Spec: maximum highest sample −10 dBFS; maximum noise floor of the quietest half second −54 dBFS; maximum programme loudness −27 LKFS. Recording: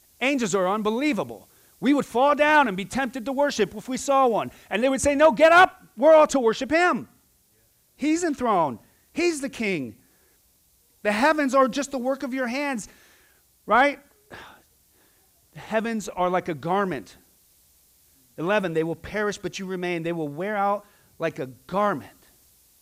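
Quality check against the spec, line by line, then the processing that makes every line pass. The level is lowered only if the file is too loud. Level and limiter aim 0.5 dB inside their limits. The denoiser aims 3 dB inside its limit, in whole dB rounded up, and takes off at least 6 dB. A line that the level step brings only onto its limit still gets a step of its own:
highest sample −7.0 dBFS: out of spec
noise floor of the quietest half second −63 dBFS: in spec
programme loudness −23.0 LKFS: out of spec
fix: level −4.5 dB

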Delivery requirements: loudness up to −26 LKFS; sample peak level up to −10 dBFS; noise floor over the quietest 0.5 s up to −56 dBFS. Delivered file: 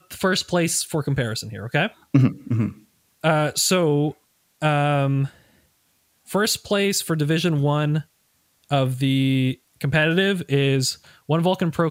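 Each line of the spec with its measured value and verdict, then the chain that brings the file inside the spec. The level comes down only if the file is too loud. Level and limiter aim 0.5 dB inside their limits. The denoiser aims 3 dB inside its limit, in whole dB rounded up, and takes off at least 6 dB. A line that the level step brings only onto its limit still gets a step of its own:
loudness −21.5 LKFS: out of spec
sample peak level −4.5 dBFS: out of spec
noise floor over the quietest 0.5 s −65 dBFS: in spec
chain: level −5 dB
brickwall limiter −10.5 dBFS

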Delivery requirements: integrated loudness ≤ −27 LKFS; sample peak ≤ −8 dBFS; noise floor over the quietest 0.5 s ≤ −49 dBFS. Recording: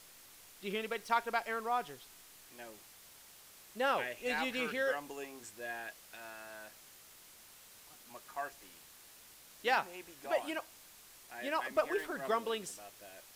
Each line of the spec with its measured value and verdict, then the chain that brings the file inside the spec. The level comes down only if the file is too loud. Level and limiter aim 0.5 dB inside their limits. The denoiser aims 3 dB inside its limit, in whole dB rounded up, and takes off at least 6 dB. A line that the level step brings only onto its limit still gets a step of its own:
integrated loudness −37.0 LKFS: in spec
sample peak −18.5 dBFS: in spec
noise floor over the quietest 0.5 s −58 dBFS: in spec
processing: no processing needed

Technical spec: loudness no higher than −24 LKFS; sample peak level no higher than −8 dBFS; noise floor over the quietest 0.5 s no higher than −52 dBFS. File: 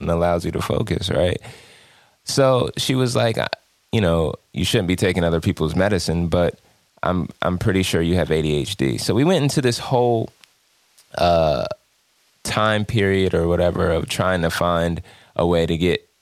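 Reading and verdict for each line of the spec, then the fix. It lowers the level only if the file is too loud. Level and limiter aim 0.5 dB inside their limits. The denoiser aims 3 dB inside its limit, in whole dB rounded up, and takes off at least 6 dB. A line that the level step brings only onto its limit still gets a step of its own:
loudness −20.0 LKFS: out of spec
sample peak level −3.0 dBFS: out of spec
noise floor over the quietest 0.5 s −62 dBFS: in spec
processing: level −4.5 dB
brickwall limiter −8.5 dBFS

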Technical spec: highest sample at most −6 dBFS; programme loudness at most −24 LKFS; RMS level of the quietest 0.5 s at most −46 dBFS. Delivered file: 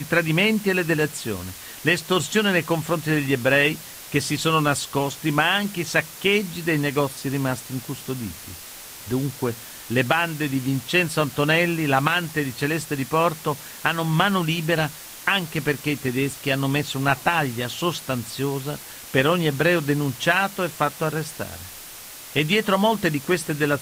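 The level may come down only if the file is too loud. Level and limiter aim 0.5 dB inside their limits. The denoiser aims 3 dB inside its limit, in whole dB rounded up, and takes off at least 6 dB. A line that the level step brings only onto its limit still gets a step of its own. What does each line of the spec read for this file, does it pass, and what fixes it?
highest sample −4.0 dBFS: out of spec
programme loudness −22.5 LKFS: out of spec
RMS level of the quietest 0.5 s −40 dBFS: out of spec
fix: broadband denoise 7 dB, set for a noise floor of −40 dBFS
level −2 dB
brickwall limiter −6.5 dBFS

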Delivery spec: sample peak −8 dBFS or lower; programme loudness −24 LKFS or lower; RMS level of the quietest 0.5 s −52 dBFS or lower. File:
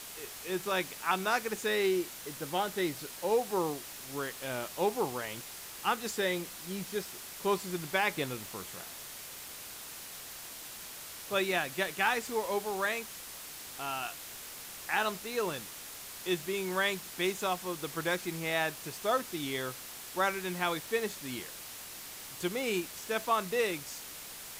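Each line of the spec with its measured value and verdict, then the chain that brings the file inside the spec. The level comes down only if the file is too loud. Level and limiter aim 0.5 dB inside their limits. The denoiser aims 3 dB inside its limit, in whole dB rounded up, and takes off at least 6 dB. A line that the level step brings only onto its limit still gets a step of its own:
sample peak −15.5 dBFS: in spec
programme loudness −34.0 LKFS: in spec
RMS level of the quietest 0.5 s −46 dBFS: out of spec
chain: broadband denoise 9 dB, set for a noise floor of −46 dBFS

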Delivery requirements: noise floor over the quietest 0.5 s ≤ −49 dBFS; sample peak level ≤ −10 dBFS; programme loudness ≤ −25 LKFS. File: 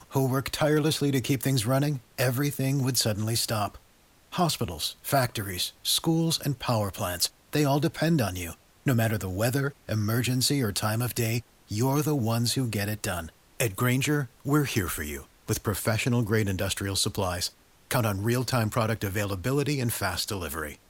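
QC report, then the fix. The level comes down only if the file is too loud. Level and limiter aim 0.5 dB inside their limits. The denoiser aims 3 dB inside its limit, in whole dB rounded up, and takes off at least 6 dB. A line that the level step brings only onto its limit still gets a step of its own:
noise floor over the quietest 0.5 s −59 dBFS: in spec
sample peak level −11.5 dBFS: in spec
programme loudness −27.0 LKFS: in spec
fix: no processing needed

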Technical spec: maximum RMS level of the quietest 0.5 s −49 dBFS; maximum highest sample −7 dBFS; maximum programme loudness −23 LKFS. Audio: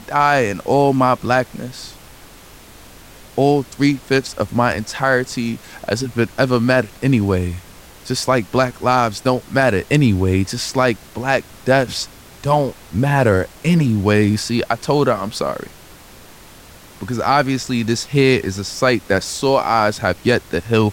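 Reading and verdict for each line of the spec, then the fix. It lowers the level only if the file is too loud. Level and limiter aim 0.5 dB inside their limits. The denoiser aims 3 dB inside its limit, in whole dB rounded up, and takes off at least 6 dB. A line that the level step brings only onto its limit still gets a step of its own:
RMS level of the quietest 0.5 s −42 dBFS: out of spec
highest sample −2.5 dBFS: out of spec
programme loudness −17.5 LKFS: out of spec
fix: broadband denoise 6 dB, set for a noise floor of −42 dBFS
level −6 dB

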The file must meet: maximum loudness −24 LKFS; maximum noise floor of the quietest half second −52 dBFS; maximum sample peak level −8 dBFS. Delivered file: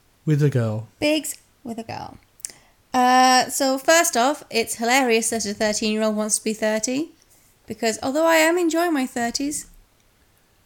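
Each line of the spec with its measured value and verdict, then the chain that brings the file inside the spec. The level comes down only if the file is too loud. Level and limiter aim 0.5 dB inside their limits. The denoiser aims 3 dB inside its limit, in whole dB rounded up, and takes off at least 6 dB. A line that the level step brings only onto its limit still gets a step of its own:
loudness −20.0 LKFS: out of spec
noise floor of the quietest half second −59 dBFS: in spec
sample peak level −4.5 dBFS: out of spec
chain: level −4.5 dB

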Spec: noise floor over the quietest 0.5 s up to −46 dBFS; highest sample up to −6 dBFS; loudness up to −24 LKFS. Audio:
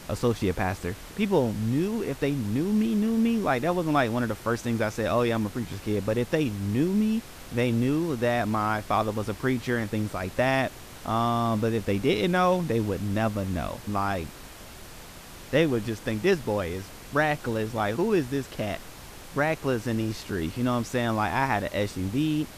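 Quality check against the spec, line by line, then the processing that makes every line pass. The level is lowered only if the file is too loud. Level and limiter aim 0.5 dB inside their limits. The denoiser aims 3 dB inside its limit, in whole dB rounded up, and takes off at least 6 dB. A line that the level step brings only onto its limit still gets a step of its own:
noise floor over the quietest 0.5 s −44 dBFS: out of spec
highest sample −9.0 dBFS: in spec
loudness −27.0 LKFS: in spec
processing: broadband denoise 6 dB, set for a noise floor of −44 dBFS

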